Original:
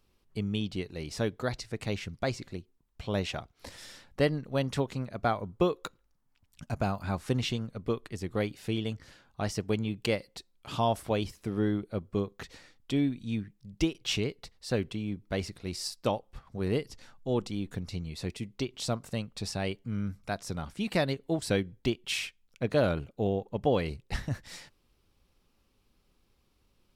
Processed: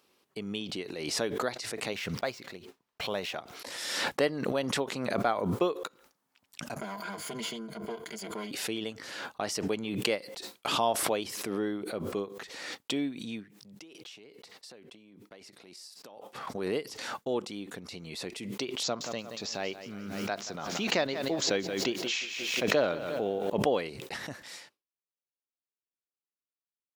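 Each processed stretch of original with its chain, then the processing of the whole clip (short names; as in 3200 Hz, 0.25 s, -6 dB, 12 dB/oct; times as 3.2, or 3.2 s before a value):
1.93–3.34 median filter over 5 samples + bell 310 Hz -5.5 dB 0.8 oct
6.79–8.51 minimum comb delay 5 ms + ripple EQ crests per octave 1.8, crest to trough 12 dB + compressor, threshold -30 dBFS
13.53–16.46 HPF 110 Hz + compressor 10:1, threshold -45 dBFS
18.83–23.5 careless resampling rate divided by 3×, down none, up filtered + lo-fi delay 0.177 s, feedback 55%, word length 9-bit, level -14.5 dB
whole clip: HPF 320 Hz 12 dB/oct; expander -53 dBFS; backwards sustainer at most 35 dB/s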